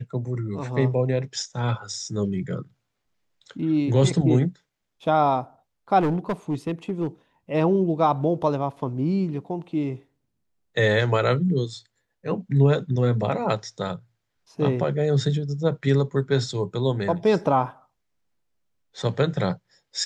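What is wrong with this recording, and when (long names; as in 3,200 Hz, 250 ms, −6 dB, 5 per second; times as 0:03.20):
0:05.99–0:07.07: clipping −19.5 dBFS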